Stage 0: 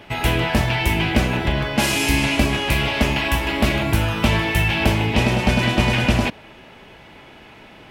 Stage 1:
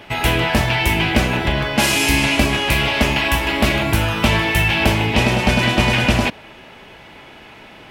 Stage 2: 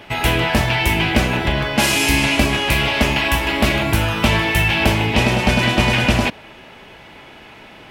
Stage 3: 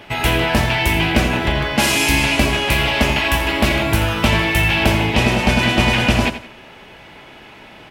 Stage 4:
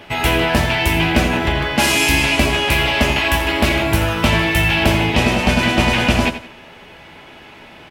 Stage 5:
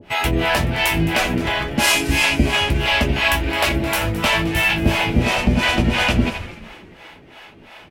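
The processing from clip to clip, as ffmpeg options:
-af "lowshelf=f=460:g=-3.5,volume=4dB"
-af anull
-af "aecho=1:1:85|170|255:0.251|0.0779|0.0241"
-filter_complex "[0:a]asplit=2[a][b];[b]adelay=12,volume=-11dB[c];[a][c]amix=inputs=2:normalize=0"
-filter_complex "[0:a]acrossover=split=480[a][b];[a]aeval=exprs='val(0)*(1-1/2+1/2*cos(2*PI*2.9*n/s))':c=same[c];[b]aeval=exprs='val(0)*(1-1/2-1/2*cos(2*PI*2.9*n/s))':c=same[d];[c][d]amix=inputs=2:normalize=0,asplit=5[e][f][g][h][i];[f]adelay=214,afreqshift=-140,volume=-15.5dB[j];[g]adelay=428,afreqshift=-280,volume=-22.4dB[k];[h]adelay=642,afreqshift=-420,volume=-29.4dB[l];[i]adelay=856,afreqshift=-560,volume=-36.3dB[m];[e][j][k][l][m]amix=inputs=5:normalize=0,volume=2dB"

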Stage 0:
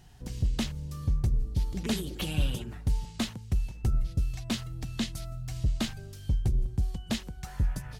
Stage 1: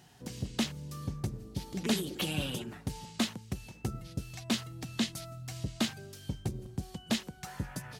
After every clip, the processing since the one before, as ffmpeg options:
-af "highpass=170,volume=1.5dB"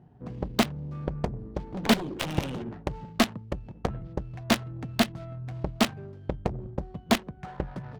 -af "adynamicsmooth=sensitivity=6.5:basefreq=500,aeval=exprs='0.141*(cos(1*acos(clip(val(0)/0.141,-1,1)))-cos(1*PI/2))+0.0398*(cos(7*acos(clip(val(0)/0.141,-1,1)))-cos(7*PI/2))':c=same,volume=7.5dB"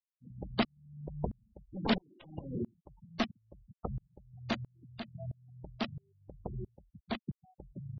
-af "afftfilt=real='re*gte(hypot(re,im),0.0562)':imag='im*gte(hypot(re,im),0.0562)':win_size=1024:overlap=0.75,alimiter=limit=-21dB:level=0:latency=1:release=375,aeval=exprs='val(0)*pow(10,-35*if(lt(mod(-1.5*n/s,1),2*abs(-1.5)/1000),1-mod(-1.5*n/s,1)/(2*abs(-1.5)/1000),(mod(-1.5*n/s,1)-2*abs(-1.5)/1000)/(1-2*abs(-1.5)/1000))/20)':c=same,volume=7dB"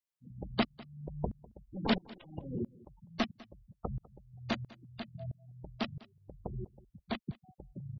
-af "aecho=1:1:200:0.0841"

